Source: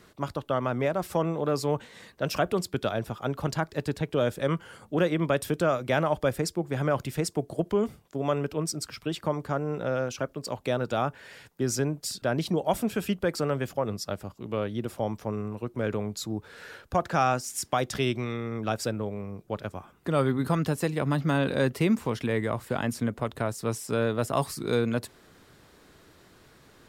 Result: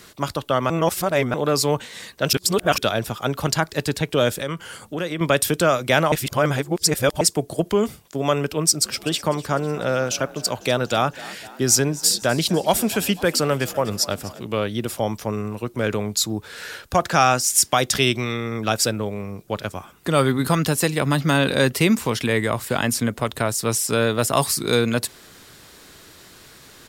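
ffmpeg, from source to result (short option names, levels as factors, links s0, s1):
-filter_complex "[0:a]asettb=1/sr,asplit=3[s0][s1][s2];[s0]atrim=end=4.414[s3];[s1]atrim=start=4.41:end=5.21,asetpts=PTS-STARTPTS,afade=t=in:d=0.004:c=qsin,afade=t=out:st=0.796:d=0.004:c=qsin,acompressor=threshold=0.0178:ratio=2:attack=3.2:release=140:knee=1:detection=peak[s4];[s2]atrim=start=5.206[s5];[s3][s4]acrossfade=d=0.004:c1=hsin:c2=qsin[s6];[s6][s5]acrossfade=d=0.004:c1=qsin:c2=hsin,asplit=3[s7][s8][s9];[s7]afade=t=out:st=8.84:d=0.02[s10];[s8]asplit=6[s11][s12][s13][s14][s15][s16];[s12]adelay=250,afreqshift=47,volume=0.112[s17];[s13]adelay=500,afreqshift=94,volume=0.0638[s18];[s14]adelay=750,afreqshift=141,volume=0.0363[s19];[s15]adelay=1000,afreqshift=188,volume=0.0209[s20];[s16]adelay=1250,afreqshift=235,volume=0.0119[s21];[s11][s17][s18][s19][s20][s21]amix=inputs=6:normalize=0,afade=t=in:st=8.84:d=0.02,afade=t=out:st=14.42:d=0.02[s22];[s9]afade=t=in:st=14.42:d=0.02[s23];[s10][s22][s23]amix=inputs=3:normalize=0,asplit=7[s24][s25][s26][s27][s28][s29][s30];[s24]atrim=end=0.702[s31];[s25]atrim=start=0.698:end=1.342,asetpts=PTS-STARTPTS,areverse[s32];[s26]atrim=start=1.338:end=2.332[s33];[s27]atrim=start=2.328:end=2.782,asetpts=PTS-STARTPTS,areverse[s34];[s28]atrim=start=2.778:end=6.122[s35];[s29]atrim=start=6.118:end=7.212,asetpts=PTS-STARTPTS,areverse[s36];[s30]atrim=start=7.208[s37];[s31][s32]acrossfade=d=0.004:c1=hsin:c2=hsin[s38];[s38][s33]acrossfade=d=0.004:c1=hsin:c2=hsin[s39];[s39][s34]acrossfade=d=0.004:c1=hsin:c2=hsin[s40];[s40][s35]acrossfade=d=0.004:c1=hsin:c2=hsin[s41];[s41][s36]acrossfade=d=0.004:c1=hsin:c2=hsin[s42];[s42][s37]acrossfade=d=0.004:c1=hsin:c2=hsin,highshelf=f=2200:g=11.5,volume=1.88"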